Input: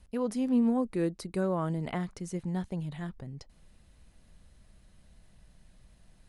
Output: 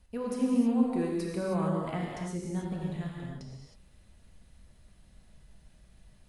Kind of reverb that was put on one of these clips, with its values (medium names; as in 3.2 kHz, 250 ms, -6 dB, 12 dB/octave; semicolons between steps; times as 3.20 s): gated-style reverb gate 340 ms flat, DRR -3 dB; trim -4 dB